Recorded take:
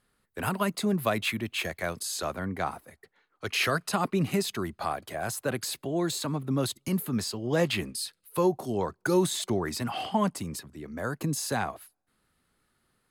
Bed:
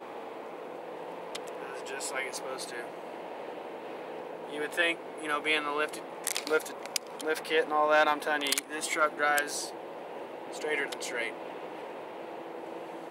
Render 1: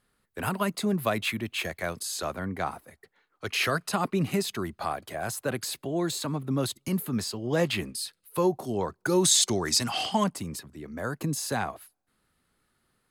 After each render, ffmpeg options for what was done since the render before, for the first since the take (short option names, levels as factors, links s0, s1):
-filter_complex "[0:a]asettb=1/sr,asplit=3[s0][s1][s2];[s0]atrim=end=9.244[s3];[s1]atrim=start=9.24:end=10.24,asetpts=PTS-STARTPTS,afade=t=in:d=0.004:c=qsin,afade=t=out:st=0.996:d=0.004:c=qsin,equalizer=f=6100:w=0.66:g=15[s4];[s2]atrim=start=10.236[s5];[s3][s4]acrossfade=d=0.004:c1=hsin:c2=qsin[s6];[s6][s5]acrossfade=d=0.004:c1=qsin:c2=hsin"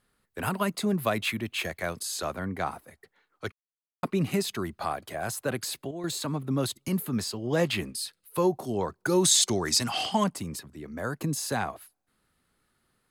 -filter_complex "[0:a]asplit=5[s0][s1][s2][s3][s4];[s0]atrim=end=3.52,asetpts=PTS-STARTPTS,afade=t=out:st=3.516:d=0.004:c=hsin[s5];[s1]atrim=start=3.52:end=4.03,asetpts=PTS-STARTPTS,volume=0[s6];[s2]atrim=start=4.03:end=5.91,asetpts=PTS-STARTPTS,afade=t=in:d=0.004:c=hsin,afade=t=out:st=1.53:d=0.35:c=log:silence=0.334965[s7];[s3]atrim=start=5.91:end=6.04,asetpts=PTS-STARTPTS,volume=0.335[s8];[s4]atrim=start=6.04,asetpts=PTS-STARTPTS,afade=t=in:d=0.35:c=log:silence=0.334965[s9];[s5][s6][s7][s8][s9]concat=n=5:v=0:a=1"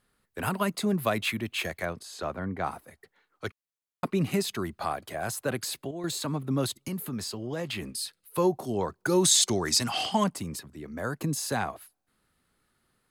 -filter_complex "[0:a]asettb=1/sr,asplit=3[s0][s1][s2];[s0]atrim=end=1.854[s3];[s1]atrim=start=1.85:end=2.64,asetpts=PTS-STARTPTS,afade=t=in:d=0.004:c=qsin,afade=t=out:st=0.786:d=0.004:c=qsin,lowpass=f=1900:p=1[s4];[s2]atrim=start=2.636[s5];[s3][s4]acrossfade=d=0.004:c1=hsin:c2=qsin[s6];[s6][s5]acrossfade=d=0.004:c1=qsin:c2=hsin,asettb=1/sr,asplit=3[s7][s8][s9];[s7]atrim=end=6.734[s10];[s8]atrim=start=6.73:end=7.95,asetpts=PTS-STARTPTS,afade=t=in:d=0.004:c=qsin,afade=t=out:st=1.216:d=0.004:c=qsin,acompressor=threshold=0.0282:ratio=3:attack=3.2:release=140:knee=1:detection=peak[s11];[s9]atrim=start=7.946[s12];[s10][s11]acrossfade=d=0.004:c1=hsin:c2=qsin[s13];[s13][s12]acrossfade=d=0.004:c1=qsin:c2=hsin"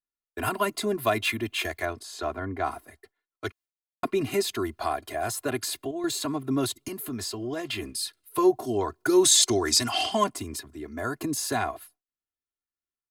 -af "agate=range=0.0224:threshold=0.00251:ratio=3:detection=peak,aecho=1:1:2.9:0.88"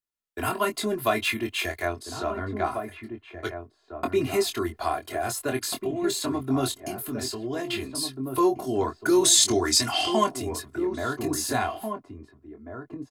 -filter_complex "[0:a]asplit=2[s0][s1];[s1]adelay=23,volume=0.501[s2];[s0][s2]amix=inputs=2:normalize=0,asplit=2[s3][s4];[s4]adelay=1691,volume=0.447,highshelf=f=4000:g=-38[s5];[s3][s5]amix=inputs=2:normalize=0"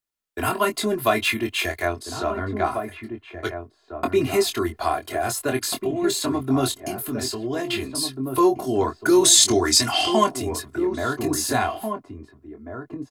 -af "volume=1.58"